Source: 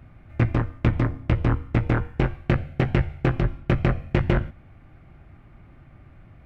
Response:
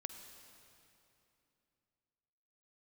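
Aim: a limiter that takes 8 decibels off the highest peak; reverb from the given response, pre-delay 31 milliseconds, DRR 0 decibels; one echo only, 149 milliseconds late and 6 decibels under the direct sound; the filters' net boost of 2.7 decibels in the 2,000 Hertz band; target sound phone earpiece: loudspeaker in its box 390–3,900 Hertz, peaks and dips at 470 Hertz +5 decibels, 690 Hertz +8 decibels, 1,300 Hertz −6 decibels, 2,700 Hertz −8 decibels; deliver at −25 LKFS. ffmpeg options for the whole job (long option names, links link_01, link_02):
-filter_complex "[0:a]equalizer=frequency=2000:width_type=o:gain=6,alimiter=limit=-14.5dB:level=0:latency=1,aecho=1:1:149:0.501,asplit=2[link_01][link_02];[1:a]atrim=start_sample=2205,adelay=31[link_03];[link_02][link_03]afir=irnorm=-1:irlink=0,volume=3dB[link_04];[link_01][link_04]amix=inputs=2:normalize=0,highpass=390,equalizer=frequency=470:width_type=q:width=4:gain=5,equalizer=frequency=690:width_type=q:width=4:gain=8,equalizer=frequency=1300:width_type=q:width=4:gain=-6,equalizer=frequency=2700:width_type=q:width=4:gain=-8,lowpass=frequency=3900:width=0.5412,lowpass=frequency=3900:width=1.3066,volume=5.5dB"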